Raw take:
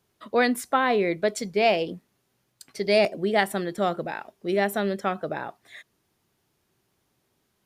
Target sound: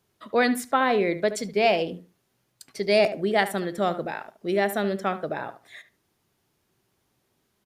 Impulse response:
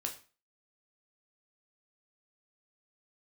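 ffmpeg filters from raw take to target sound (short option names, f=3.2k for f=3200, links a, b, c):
-filter_complex "[0:a]asplit=2[a][b];[b]adelay=73,lowpass=f=2.2k:p=1,volume=-12dB,asplit=2[c][d];[d]adelay=73,lowpass=f=2.2k:p=1,volume=0.21,asplit=2[e][f];[f]adelay=73,lowpass=f=2.2k:p=1,volume=0.21[g];[a][c][e][g]amix=inputs=4:normalize=0"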